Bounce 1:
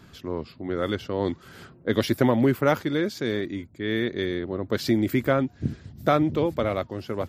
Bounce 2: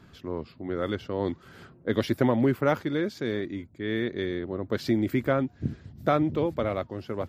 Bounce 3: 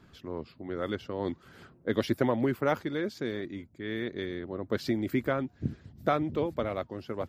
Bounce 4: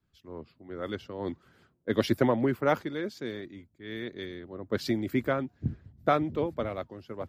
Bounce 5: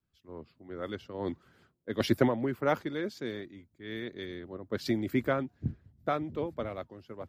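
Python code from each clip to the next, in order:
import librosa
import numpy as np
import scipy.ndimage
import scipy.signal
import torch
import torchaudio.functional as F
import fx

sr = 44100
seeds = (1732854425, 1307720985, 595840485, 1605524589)

y1 = fx.high_shelf(x, sr, hz=4300.0, db=-7.5)
y1 = F.gain(torch.from_numpy(y1), -2.5).numpy()
y2 = fx.hpss(y1, sr, part='harmonic', gain_db=-5)
y2 = F.gain(torch.from_numpy(y2), -1.5).numpy()
y3 = fx.band_widen(y2, sr, depth_pct=70)
y4 = fx.tremolo_random(y3, sr, seeds[0], hz=3.5, depth_pct=55)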